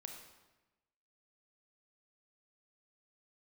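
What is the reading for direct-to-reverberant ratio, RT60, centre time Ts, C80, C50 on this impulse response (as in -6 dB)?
3.0 dB, 1.1 s, 37 ms, 6.5 dB, 4.5 dB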